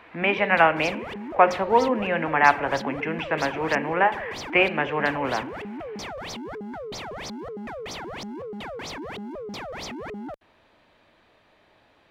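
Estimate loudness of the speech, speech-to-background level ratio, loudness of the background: −22.5 LKFS, 13.0 dB, −35.5 LKFS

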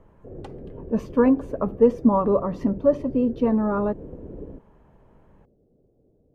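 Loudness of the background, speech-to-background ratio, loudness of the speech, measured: −40.0 LKFS, 18.0 dB, −22.0 LKFS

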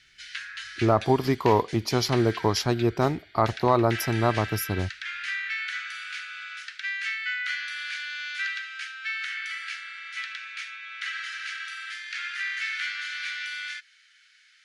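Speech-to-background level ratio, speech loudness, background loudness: 8.5 dB, −24.5 LKFS, −33.0 LKFS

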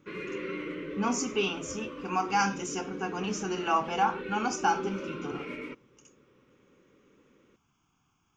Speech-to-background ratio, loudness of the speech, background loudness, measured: 8.0 dB, −31.0 LKFS, −39.0 LKFS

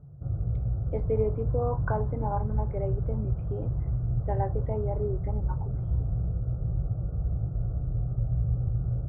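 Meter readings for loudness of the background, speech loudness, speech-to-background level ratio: −31.0 LKFS, −34.0 LKFS, −3.0 dB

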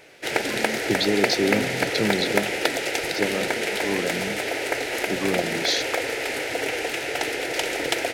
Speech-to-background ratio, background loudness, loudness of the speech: −2.5 dB, −25.0 LKFS, −27.5 LKFS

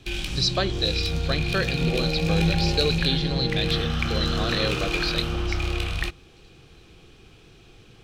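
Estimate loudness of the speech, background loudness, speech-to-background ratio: −27.5 LKFS, −26.5 LKFS, −1.0 dB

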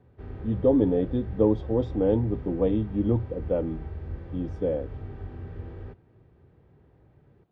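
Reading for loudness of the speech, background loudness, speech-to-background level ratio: −26.5 LKFS, −39.0 LKFS, 12.5 dB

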